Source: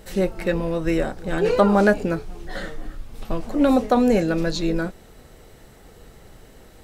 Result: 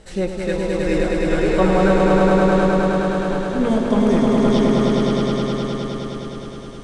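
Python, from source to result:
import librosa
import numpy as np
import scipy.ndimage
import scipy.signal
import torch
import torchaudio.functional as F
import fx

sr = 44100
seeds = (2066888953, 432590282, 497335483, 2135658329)

y = fx.pitch_glide(x, sr, semitones=-5.0, runs='starting unshifted')
y = scipy.signal.sosfilt(scipy.signal.cheby1(4, 1.0, 9300.0, 'lowpass', fs=sr, output='sos'), y)
y = fx.echo_swell(y, sr, ms=104, loudest=5, wet_db=-3.0)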